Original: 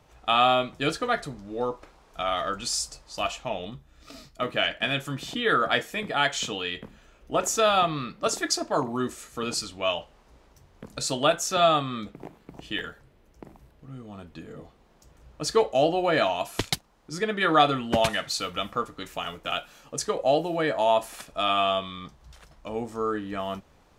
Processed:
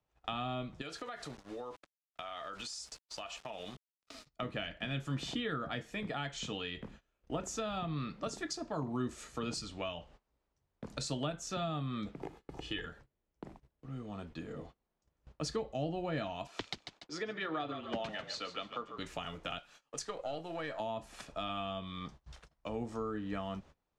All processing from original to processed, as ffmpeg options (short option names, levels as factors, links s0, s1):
-filter_complex "[0:a]asettb=1/sr,asplit=3[s0][s1][s2];[s0]atrim=end=0.814[s3];[s1]atrim=start=0.81:end=4.26,asetpts=PTS-STARTPTS,afade=t=in:d=0.004:c=qsin,afade=t=out:st=3.446:d=0.004:c=qsin,lowshelf=f=330:g=-9,aeval=exprs='val(0)*gte(abs(val(0)),0.00501)':c=same,acompressor=threshold=0.0158:ratio=10:attack=3.2:release=140:knee=1:detection=peak[s4];[s2]atrim=start=4.256[s5];[s3][s4]acrossfade=d=0.004:c1=hsin:c2=qsin[s6];[s6][s5]acrossfade=d=0.004:c1=qsin:c2=hsin,asettb=1/sr,asplit=3[s7][s8][s9];[s7]atrim=end=12.224[s10];[s8]atrim=start=12.22:end=12.86,asetpts=PTS-STARTPTS,afade=t=in:d=0.004:c=qsin,afade=t=out:st=0.636:d=0.004:c=qsin,highshelf=f=7800:g=7.5,aecho=1:1:2.4:0.5,atrim=end_sample=28224,acrossover=split=6200[s11][s12];[s12]acompressor=threshold=0.001:ratio=4:attack=1:release=60[s13];[s11][s13]amix=inputs=2:normalize=0[s14];[s9]atrim=start=12.856[s15];[s10][s14]acrossfade=d=0.004:c1=hsin:c2=qsin[s16];[s16][s15]acrossfade=d=0.004:c1=qsin:c2=hsin,asettb=1/sr,asplit=3[s17][s18][s19];[s17]atrim=end=16.474[s20];[s18]atrim=start=16.47:end=18.98,asetpts=PTS-STARTPTS,afade=t=in:d=0.004:c=qsin,afade=t=out:st=2.506:d=0.004:c=qsin,acrossover=split=270 6500:gain=0.112 1 0.126[s21][s22][s23];[s21][s22][s23]amix=inputs=3:normalize=0,asplit=4[s24][s25][s26][s27];[s25]adelay=144,afreqshift=-40,volume=0.251[s28];[s26]adelay=288,afreqshift=-80,volume=0.0804[s29];[s27]adelay=432,afreqshift=-120,volume=0.0257[s30];[s24][s28][s29][s30]amix=inputs=4:normalize=0,atrim=end_sample=110691[s31];[s19]atrim=start=18.976[s32];[s20][s31]acrossfade=d=0.004:c1=hsin:c2=qsin[s33];[s33][s32]acrossfade=d=0.004:c1=qsin:c2=hsin,asettb=1/sr,asplit=3[s34][s35][s36];[s34]atrim=end=19.584[s37];[s35]atrim=start=19.58:end=20.8,asetpts=PTS-STARTPTS,afade=t=in:d=0.004:c=qsin,afade=t=out:st=1.216:d=0.004:c=qsin,aeval=exprs='if(lt(val(0),0),0.708*val(0),val(0))':c=same,lowshelf=f=430:g=-11.5[s38];[s36]atrim=start=20.796[s39];[s37][s38]acrossfade=d=0.004:c1=hsin:c2=qsin[s40];[s40][s39]acrossfade=d=0.004:c1=qsin:c2=hsin,agate=range=0.0631:threshold=0.00355:ratio=16:detection=peak,lowpass=7300,acrossover=split=230[s41][s42];[s42]acompressor=threshold=0.0158:ratio=6[s43];[s41][s43]amix=inputs=2:normalize=0,volume=0.794"